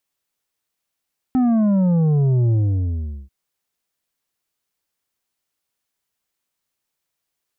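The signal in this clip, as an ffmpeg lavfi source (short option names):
-f lavfi -i "aevalsrc='0.188*clip((1.94-t)/0.77,0,1)*tanh(2.24*sin(2*PI*260*1.94/log(65/260)*(exp(log(65/260)*t/1.94)-1)))/tanh(2.24)':d=1.94:s=44100"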